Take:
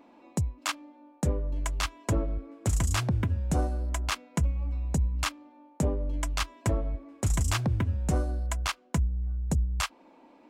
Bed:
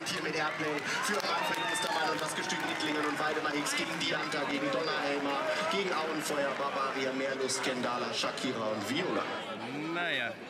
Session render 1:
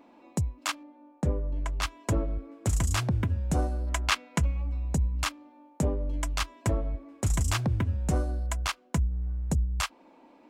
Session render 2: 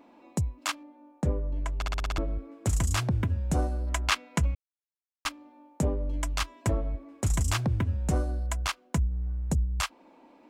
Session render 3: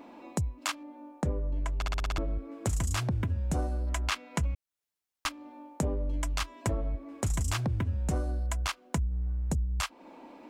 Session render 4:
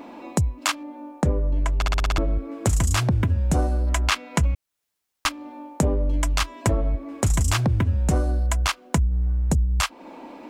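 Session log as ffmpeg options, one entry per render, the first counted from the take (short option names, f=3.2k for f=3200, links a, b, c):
-filter_complex "[0:a]asettb=1/sr,asplit=3[a][b][c];[a]atrim=end=0.834[d];[b]atrim=start=0.83:end=1.82,asetpts=PTS-STARTPTS,afade=t=in:d=0.004:c=qsin,afade=t=out:st=0.986:d=0.004:c=qsin,lowpass=f=2.1k:p=1[e];[c]atrim=start=1.816[f];[d][e]acrossfade=d=0.004:c1=hsin:c2=qsin[g];[g][f]acrossfade=d=0.004:c1=qsin:c2=hsin,asettb=1/sr,asplit=3[h][i][j];[h]atrim=end=3.874[k];[i]atrim=start=3.87:end=4.62,asetpts=PTS-STARTPTS,afade=t=in:d=0.004:c=qsin,afade=t=out:st=0.746:d=0.004:c=qsin,equalizer=f=2.3k:t=o:w=2.9:g=6.5[l];[j]atrim=start=4.616[m];[k][l]acrossfade=d=0.004:c1=hsin:c2=qsin[n];[n][m]acrossfade=d=0.004:c1=qsin:c2=hsin,asettb=1/sr,asplit=3[o][p][q];[o]atrim=end=9.114[r];[p]atrim=start=9.11:end=9.51,asetpts=PTS-STARTPTS,afade=t=in:d=0.004:c=qsin,afade=t=out:st=0.396:d=0.004:c=qsin,aeval=exprs='sgn(val(0))*max(abs(val(0))-0.00178,0)':c=same[s];[q]atrim=start=9.506[t];[r][s]acrossfade=d=0.004:c1=hsin:c2=qsin[u];[u][t]acrossfade=d=0.004:c1=qsin:c2=hsin"
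-filter_complex "[0:a]asplit=10[a][b][c][d][e][f][g][h][i][j];[a]atrim=end=1.822[k];[b]atrim=start=1.758:end=1.822[l];[c]atrim=start=1.758:end=1.822[m];[d]atrim=start=1.758:end=1.822[n];[e]atrim=start=1.758:end=1.822[o];[f]atrim=start=1.758:end=1.822[p];[g]atrim=start=1.758:end=1.822[q];[h]atrim=start=2.178:end=4.55,asetpts=PTS-STARTPTS,afade=t=out:st=2.368:d=0.004:c=hsin[r];[i]atrim=start=4.55:end=5.25,asetpts=PTS-STARTPTS,volume=0[s];[j]atrim=start=5.25,asetpts=PTS-STARTPTS,afade=t=in:d=0.004:c=hsin[t];[k][l]acrossfade=d=0.004:c1=hsin:c2=hsin[u];[u][m]acrossfade=d=0.004:c1=hsin:c2=hsin[v];[v][n]acrossfade=d=0.004:c1=hsin:c2=hsin[w];[w][o]acrossfade=d=0.004:c1=hsin:c2=hsin[x];[x][p]acrossfade=d=0.004:c1=hsin:c2=hsin[y];[y][q]acrossfade=d=0.004:c1=hsin:c2=hsin[z];[r][s][t]concat=n=3:v=0:a=1[aa];[z][aa]acrossfade=d=0.004:c1=hsin:c2=hsin"
-filter_complex "[0:a]asplit=2[a][b];[b]alimiter=limit=-22.5dB:level=0:latency=1:release=15,volume=1dB[c];[a][c]amix=inputs=2:normalize=0,acompressor=threshold=-34dB:ratio=2"
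-af "volume=9dB"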